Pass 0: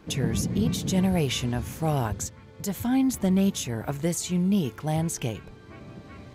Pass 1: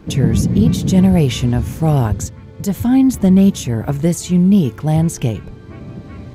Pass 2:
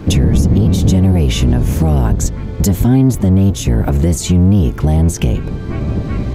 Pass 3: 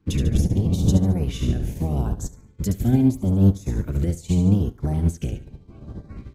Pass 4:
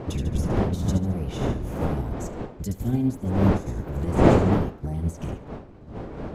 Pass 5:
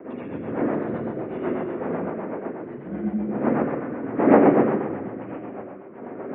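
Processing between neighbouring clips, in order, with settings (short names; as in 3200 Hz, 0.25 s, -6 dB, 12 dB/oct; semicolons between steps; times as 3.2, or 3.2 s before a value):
low shelf 430 Hz +9.5 dB; gain +4.5 dB
octaver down 1 oct, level +2 dB; compressor 4:1, threshold -19 dBFS, peak gain reduction 13.5 dB; maximiser +13 dB; gain -2.5 dB
LFO notch saw up 0.81 Hz 600–3400 Hz; on a send: feedback echo 72 ms, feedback 45%, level -9 dB; on the sum: upward expander 2.5:1, over -26 dBFS; gain -5 dB
wind noise 440 Hz -21 dBFS; gain -6 dB
spring tank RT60 1.7 s, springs 40/47/53 ms, chirp 40 ms, DRR -6.5 dB; rotary speaker horn 8 Hz; mistuned SSB -54 Hz 300–2300 Hz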